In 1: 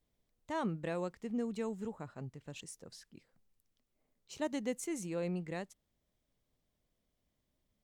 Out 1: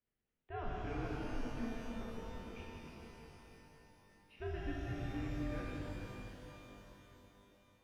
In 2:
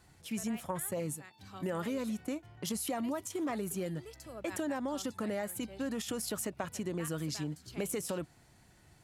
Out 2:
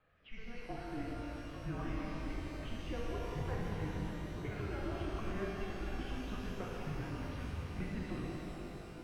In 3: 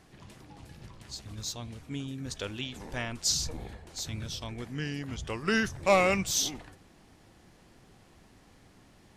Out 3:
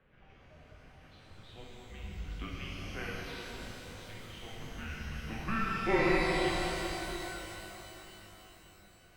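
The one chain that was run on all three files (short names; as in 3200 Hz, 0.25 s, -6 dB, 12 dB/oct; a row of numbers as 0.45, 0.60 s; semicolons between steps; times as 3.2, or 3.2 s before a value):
notch 1100 Hz, Q 13; mistuned SSB -220 Hz 160–3200 Hz; shimmer reverb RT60 3.9 s, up +12 st, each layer -8 dB, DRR -5 dB; gain -8 dB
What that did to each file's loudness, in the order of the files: -5.0, -5.0, -4.5 LU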